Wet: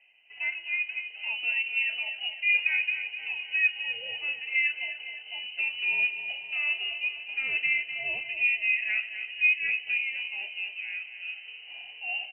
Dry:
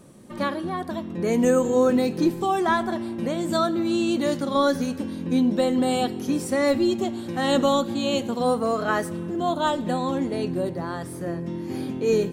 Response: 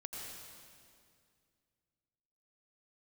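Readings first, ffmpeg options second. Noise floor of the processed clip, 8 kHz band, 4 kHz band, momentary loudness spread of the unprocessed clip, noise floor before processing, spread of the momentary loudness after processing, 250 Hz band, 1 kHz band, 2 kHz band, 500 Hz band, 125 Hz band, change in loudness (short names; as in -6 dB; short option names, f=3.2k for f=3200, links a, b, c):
-47 dBFS, under -40 dB, 0.0 dB, 10 LU, -35 dBFS, 12 LU, under -40 dB, -26.5 dB, +9.0 dB, -32.0 dB, under -30 dB, -3.5 dB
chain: -filter_complex "[0:a]flanger=delay=6.6:depth=8.6:regen=70:speed=0.81:shape=triangular,asplit=3[a][b][c];[a]bandpass=f=730:t=q:w=8,volume=0dB[d];[b]bandpass=f=1.09k:t=q:w=8,volume=-6dB[e];[c]bandpass=f=2.44k:t=q:w=8,volume=-9dB[f];[d][e][f]amix=inputs=3:normalize=0,asplit=2[g][h];[h]aecho=0:1:253|506|759|1012|1265|1518:0.316|0.174|0.0957|0.0526|0.0289|0.0159[i];[g][i]amix=inputs=2:normalize=0,lowpass=f=2.7k:t=q:w=0.5098,lowpass=f=2.7k:t=q:w=0.6013,lowpass=f=2.7k:t=q:w=0.9,lowpass=f=2.7k:t=q:w=2.563,afreqshift=-3200,volume=8.5dB"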